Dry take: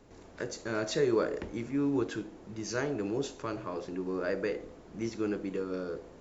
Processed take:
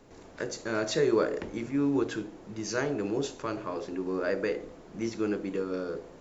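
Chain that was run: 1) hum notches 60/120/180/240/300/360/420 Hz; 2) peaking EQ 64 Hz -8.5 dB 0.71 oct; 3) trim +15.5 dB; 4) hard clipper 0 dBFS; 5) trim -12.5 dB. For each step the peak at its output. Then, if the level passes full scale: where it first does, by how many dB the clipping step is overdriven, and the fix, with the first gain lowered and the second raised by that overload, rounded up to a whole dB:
-17.5 dBFS, -17.5 dBFS, -2.0 dBFS, -2.0 dBFS, -14.5 dBFS; nothing clips

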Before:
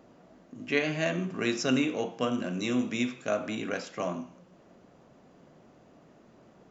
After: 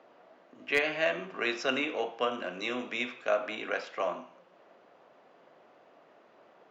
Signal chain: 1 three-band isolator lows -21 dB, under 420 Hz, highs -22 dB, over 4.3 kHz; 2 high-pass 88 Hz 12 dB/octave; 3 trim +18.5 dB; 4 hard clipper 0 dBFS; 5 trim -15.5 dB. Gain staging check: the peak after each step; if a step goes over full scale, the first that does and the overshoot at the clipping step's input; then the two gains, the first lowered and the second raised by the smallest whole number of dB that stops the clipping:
-14.0 dBFS, -13.5 dBFS, +5.0 dBFS, 0.0 dBFS, -15.5 dBFS; step 3, 5.0 dB; step 3 +13.5 dB, step 5 -10.5 dB

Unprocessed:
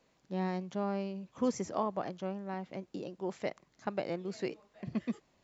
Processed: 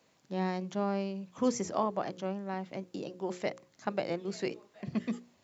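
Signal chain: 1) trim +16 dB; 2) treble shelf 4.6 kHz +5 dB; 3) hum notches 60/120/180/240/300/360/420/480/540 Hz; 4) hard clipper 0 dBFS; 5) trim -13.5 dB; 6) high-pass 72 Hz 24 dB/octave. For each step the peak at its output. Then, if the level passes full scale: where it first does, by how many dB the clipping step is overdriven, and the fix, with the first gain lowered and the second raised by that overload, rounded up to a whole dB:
-2.5 dBFS, -2.5 dBFS, -3.0 dBFS, -3.0 dBFS, -16.5 dBFS, -16.5 dBFS; nothing clips

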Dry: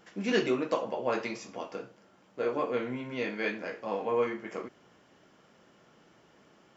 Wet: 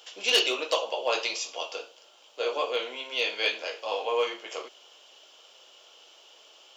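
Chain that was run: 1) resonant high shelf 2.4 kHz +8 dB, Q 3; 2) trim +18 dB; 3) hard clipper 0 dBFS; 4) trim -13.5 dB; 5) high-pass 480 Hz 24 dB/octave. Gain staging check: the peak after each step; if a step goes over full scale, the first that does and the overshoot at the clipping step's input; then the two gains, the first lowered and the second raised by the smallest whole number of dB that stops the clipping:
-10.5 dBFS, +7.5 dBFS, 0.0 dBFS, -13.5 dBFS, -8.5 dBFS; step 2, 7.5 dB; step 2 +10 dB, step 4 -5.5 dB

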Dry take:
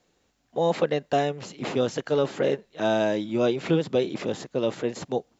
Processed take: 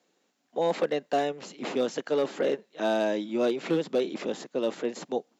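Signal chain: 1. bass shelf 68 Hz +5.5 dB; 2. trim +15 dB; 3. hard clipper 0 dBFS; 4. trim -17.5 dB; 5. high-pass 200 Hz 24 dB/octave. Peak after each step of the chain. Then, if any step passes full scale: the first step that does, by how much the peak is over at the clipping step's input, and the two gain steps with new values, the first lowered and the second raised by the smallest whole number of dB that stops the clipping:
-9.5 dBFS, +5.5 dBFS, 0.0 dBFS, -17.5 dBFS, -14.5 dBFS; step 2, 5.5 dB; step 2 +9 dB, step 4 -11.5 dB

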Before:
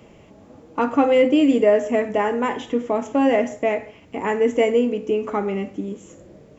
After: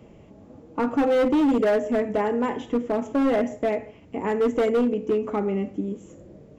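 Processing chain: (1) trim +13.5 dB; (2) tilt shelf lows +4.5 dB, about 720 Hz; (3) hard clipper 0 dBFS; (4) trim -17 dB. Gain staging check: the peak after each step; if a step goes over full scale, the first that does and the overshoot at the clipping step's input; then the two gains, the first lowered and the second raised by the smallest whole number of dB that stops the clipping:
+8.5 dBFS, +9.5 dBFS, 0.0 dBFS, -17.0 dBFS; step 1, 9.5 dB; step 1 +3.5 dB, step 4 -7 dB

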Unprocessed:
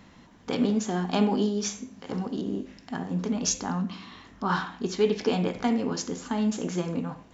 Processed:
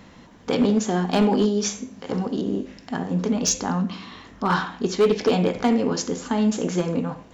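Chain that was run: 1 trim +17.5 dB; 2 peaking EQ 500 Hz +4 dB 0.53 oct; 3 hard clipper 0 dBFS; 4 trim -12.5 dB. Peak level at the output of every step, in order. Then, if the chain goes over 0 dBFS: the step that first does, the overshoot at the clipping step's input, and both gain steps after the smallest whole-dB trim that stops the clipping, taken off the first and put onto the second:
+6.0 dBFS, +7.5 dBFS, 0.0 dBFS, -12.5 dBFS; step 1, 7.5 dB; step 1 +9.5 dB, step 4 -4.5 dB

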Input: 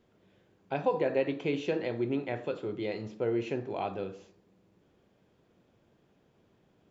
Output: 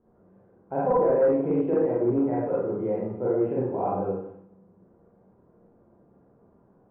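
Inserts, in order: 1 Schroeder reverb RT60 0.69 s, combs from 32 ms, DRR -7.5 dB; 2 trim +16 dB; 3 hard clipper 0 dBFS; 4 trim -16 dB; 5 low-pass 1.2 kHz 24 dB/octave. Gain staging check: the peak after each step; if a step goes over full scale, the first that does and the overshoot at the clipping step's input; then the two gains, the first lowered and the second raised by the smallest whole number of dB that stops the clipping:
-8.5 dBFS, +7.5 dBFS, 0.0 dBFS, -16.0 dBFS, -14.5 dBFS; step 2, 7.5 dB; step 2 +8 dB, step 4 -8 dB

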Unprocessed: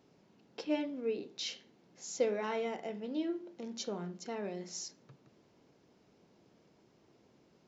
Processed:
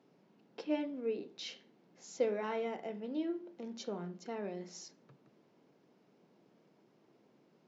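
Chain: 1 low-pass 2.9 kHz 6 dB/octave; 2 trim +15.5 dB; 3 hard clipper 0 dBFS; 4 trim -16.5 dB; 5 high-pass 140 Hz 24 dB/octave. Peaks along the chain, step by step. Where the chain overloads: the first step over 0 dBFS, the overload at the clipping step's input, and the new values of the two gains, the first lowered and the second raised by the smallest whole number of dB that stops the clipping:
-20.0 dBFS, -4.5 dBFS, -4.5 dBFS, -21.0 dBFS, -21.0 dBFS; nothing clips

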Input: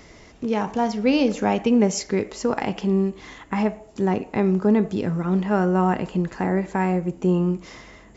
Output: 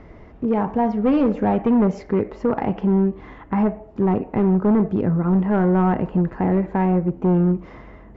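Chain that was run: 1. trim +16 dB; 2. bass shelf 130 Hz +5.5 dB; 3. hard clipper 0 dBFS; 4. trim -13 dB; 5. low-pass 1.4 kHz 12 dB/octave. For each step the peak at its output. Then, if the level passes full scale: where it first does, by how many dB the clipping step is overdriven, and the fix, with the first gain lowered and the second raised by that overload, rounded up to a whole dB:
+8.5 dBFS, +10.0 dBFS, 0.0 dBFS, -13.0 dBFS, -12.5 dBFS; step 1, 10.0 dB; step 1 +6 dB, step 4 -3 dB

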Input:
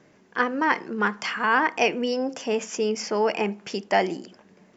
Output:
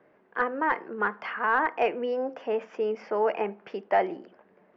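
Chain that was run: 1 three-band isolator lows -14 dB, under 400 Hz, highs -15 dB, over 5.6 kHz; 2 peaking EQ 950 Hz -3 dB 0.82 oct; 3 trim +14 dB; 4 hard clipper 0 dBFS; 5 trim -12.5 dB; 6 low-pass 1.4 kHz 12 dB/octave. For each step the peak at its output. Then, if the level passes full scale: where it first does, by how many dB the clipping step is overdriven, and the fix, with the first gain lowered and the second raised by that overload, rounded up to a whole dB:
-7.5 dBFS, -8.5 dBFS, +5.5 dBFS, 0.0 dBFS, -12.5 dBFS, -12.5 dBFS; step 3, 5.5 dB; step 3 +8 dB, step 5 -6.5 dB

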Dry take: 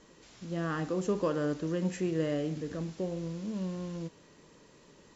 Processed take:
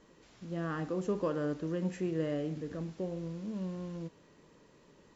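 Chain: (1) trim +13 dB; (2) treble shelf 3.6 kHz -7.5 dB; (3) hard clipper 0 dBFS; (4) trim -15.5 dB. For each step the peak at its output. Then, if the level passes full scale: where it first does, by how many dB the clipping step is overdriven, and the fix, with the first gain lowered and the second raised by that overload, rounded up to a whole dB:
-6.0 dBFS, -6.0 dBFS, -6.0 dBFS, -21.5 dBFS; nothing clips

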